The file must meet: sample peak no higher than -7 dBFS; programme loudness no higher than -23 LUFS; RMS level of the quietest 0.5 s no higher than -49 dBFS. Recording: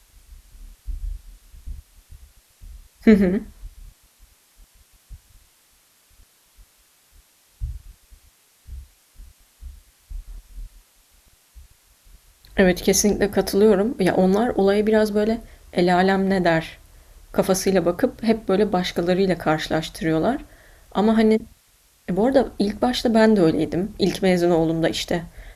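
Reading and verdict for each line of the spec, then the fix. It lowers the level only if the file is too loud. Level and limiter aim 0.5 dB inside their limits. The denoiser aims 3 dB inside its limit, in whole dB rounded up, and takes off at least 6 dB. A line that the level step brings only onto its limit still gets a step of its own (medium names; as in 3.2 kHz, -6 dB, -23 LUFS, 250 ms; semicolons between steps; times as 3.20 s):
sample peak -3.0 dBFS: fail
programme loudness -20.0 LUFS: fail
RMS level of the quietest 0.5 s -59 dBFS: pass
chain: trim -3.5 dB; peak limiter -7.5 dBFS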